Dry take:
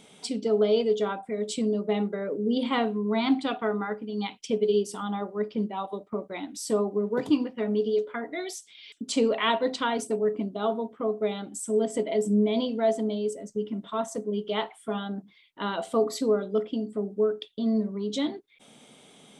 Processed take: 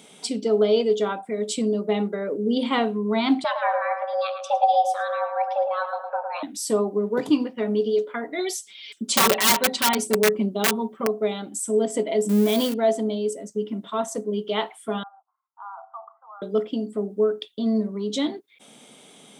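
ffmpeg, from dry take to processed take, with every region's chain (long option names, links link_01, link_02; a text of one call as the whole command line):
ffmpeg -i in.wav -filter_complex "[0:a]asettb=1/sr,asplit=3[link_01][link_02][link_03];[link_01]atrim=end=3.444[link_04];[link_02]atrim=start=3.44:end=6.43,asetpts=PTS-STARTPTS,afade=type=in:duration=0.004:curve=qsin,afade=type=out:start_time=2.986:duration=0.004:curve=qsin,aemphasis=mode=reproduction:type=50fm,afreqshift=340,asplit=2[link_05][link_06];[link_06]adelay=109,lowpass=frequency=1400:poles=1,volume=-4dB,asplit=2[link_07][link_08];[link_08]adelay=109,lowpass=frequency=1400:poles=1,volume=0.54,asplit=2[link_09][link_10];[link_10]adelay=109,lowpass=frequency=1400:poles=1,volume=0.54,asplit=2[link_11][link_12];[link_12]adelay=109,lowpass=frequency=1400:poles=1,volume=0.54,asplit=2[link_13][link_14];[link_14]adelay=109,lowpass=frequency=1400:poles=1,volume=0.54,asplit=2[link_15][link_16];[link_16]adelay=109,lowpass=frequency=1400:poles=1,volume=0.54,asplit=2[link_17][link_18];[link_18]adelay=109,lowpass=frequency=1400:poles=1,volume=0.54[link_19];[link_05][link_07][link_09][link_11][link_13][link_15][link_17][link_19]amix=inputs=8:normalize=0,atrim=end_sample=131859[link_20];[link_03]atrim=start=6.426[link_21];[link_04][link_20]acrossfade=duration=0.004:curve1=hsin:curve2=qsin[link_22];[link_22][link_21]acrossfade=duration=0.004:curve1=qsin:curve2=hsin,asettb=1/sr,asplit=3[link_23][link_24][link_25];[link_23]atrim=end=8.384[link_26];[link_24]atrim=start=8.38:end=11.07,asetpts=PTS-STARTPTS,afade=type=in:duration=0.004:curve=qsin,afade=type=out:start_time=2.686:duration=0.004:curve=qsin,aeval=exprs='(mod(7.94*val(0)+1,2)-1)/7.94':channel_layout=same,aecho=1:1:5.2:0.84,atrim=end_sample=118629[link_27];[link_25]atrim=start=11.066[link_28];[link_26][link_27]acrossfade=duration=0.004:curve1=hsin:curve2=qsin[link_29];[link_29][link_28]acrossfade=duration=0.004:curve1=qsin:curve2=hsin,asettb=1/sr,asplit=3[link_30][link_31][link_32];[link_30]atrim=end=12.294[link_33];[link_31]atrim=start=12.29:end=12.74,asetpts=PTS-STARTPTS,afade=type=in:duration=0.004:curve=qsin,afade=type=out:start_time=0.446:duration=0.004:curve=qsin,aeval=exprs='val(0)+0.5*0.0188*sgn(val(0))':channel_layout=same,highshelf=frequency=6700:gain=11.5[link_34];[link_32]atrim=start=12.736[link_35];[link_33][link_34]acrossfade=duration=0.004:curve1=hsin:curve2=qsin[link_36];[link_36][link_35]acrossfade=duration=0.004:curve1=qsin:curve2=hsin,asettb=1/sr,asplit=3[link_37][link_38][link_39];[link_37]atrim=end=15.034[link_40];[link_38]atrim=start=15.03:end=16.42,asetpts=PTS-STARTPTS,afade=type=in:duration=0.004:curve=qsin,afade=type=out:start_time=1.386:duration=0.004:curve=qsin,asuperpass=centerf=1000:order=12:qfactor=1.5,acompressor=threshold=-51dB:ratio=1.5:attack=3.2:release=140:knee=1:detection=peak[link_41];[link_39]atrim=start=16.416[link_42];[link_40][link_41]acrossfade=duration=0.004:curve1=hsin:curve2=qsin[link_43];[link_43][link_42]acrossfade=duration=0.004:curve1=qsin:curve2=hsin,highpass=150,highshelf=frequency=9200:gain=7,volume=3.5dB" out.wav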